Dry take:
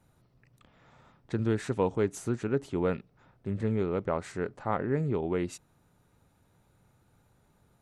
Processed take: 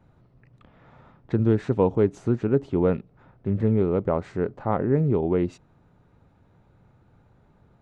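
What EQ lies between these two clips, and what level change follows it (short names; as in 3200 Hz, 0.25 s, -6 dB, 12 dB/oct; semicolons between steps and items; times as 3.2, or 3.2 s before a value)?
dynamic EQ 1700 Hz, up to -5 dB, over -49 dBFS, Q 1; tape spacing loss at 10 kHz 27 dB; +8.5 dB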